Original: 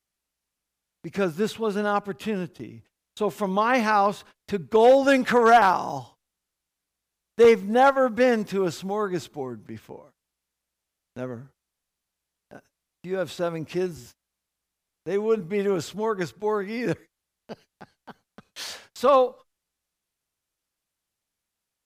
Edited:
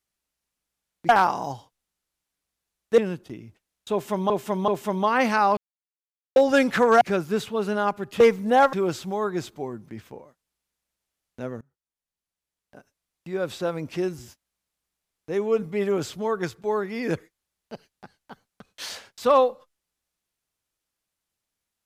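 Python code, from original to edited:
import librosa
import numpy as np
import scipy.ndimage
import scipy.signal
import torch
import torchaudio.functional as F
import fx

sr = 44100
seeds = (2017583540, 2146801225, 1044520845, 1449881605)

y = fx.edit(x, sr, fx.swap(start_s=1.09, length_s=1.19, other_s=5.55, other_length_s=1.89),
    fx.repeat(start_s=3.22, length_s=0.38, count=3),
    fx.silence(start_s=4.11, length_s=0.79),
    fx.cut(start_s=7.97, length_s=0.54),
    fx.fade_in_from(start_s=11.39, length_s=1.73, floor_db=-24.0), tone=tone)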